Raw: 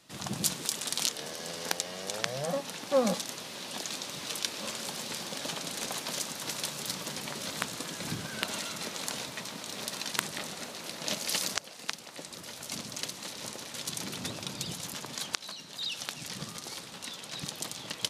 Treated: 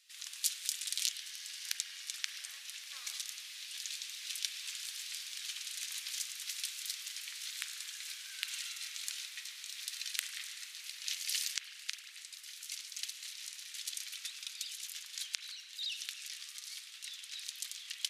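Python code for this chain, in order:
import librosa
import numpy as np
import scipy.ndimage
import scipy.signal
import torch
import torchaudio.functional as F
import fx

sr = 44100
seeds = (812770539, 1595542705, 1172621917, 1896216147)

y = scipy.signal.sosfilt(scipy.signal.cheby2(4, 80, 330.0, 'highpass', fs=sr, output='sos'), x)
y = fx.rev_spring(y, sr, rt60_s=1.9, pass_ms=(34, 46), chirp_ms=70, drr_db=6.0)
y = y * 10.0 ** (-4.0 / 20.0)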